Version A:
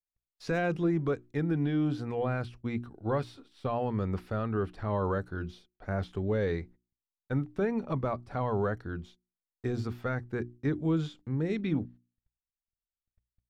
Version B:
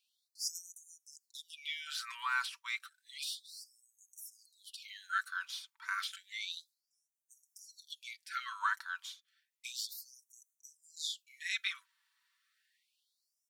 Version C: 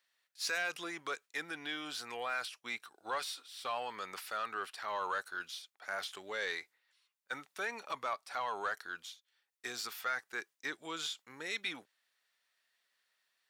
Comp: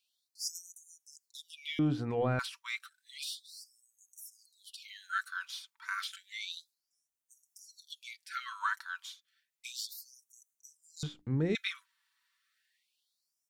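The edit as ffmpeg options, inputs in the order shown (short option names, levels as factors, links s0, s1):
-filter_complex "[0:a]asplit=2[s0][s1];[1:a]asplit=3[s2][s3][s4];[s2]atrim=end=1.792[s5];[s0]atrim=start=1.788:end=2.392[s6];[s3]atrim=start=2.388:end=11.032[s7];[s1]atrim=start=11.028:end=11.552[s8];[s4]atrim=start=11.548[s9];[s5][s6]acrossfade=d=0.004:c1=hsin:c2=hsin[s10];[s10][s7]acrossfade=d=0.004:c1=hsin:c2=hsin[s11];[s11][s8]acrossfade=d=0.004:c1=hsin:c2=hsin[s12];[s12][s9]acrossfade=d=0.004:c1=hsin:c2=hsin"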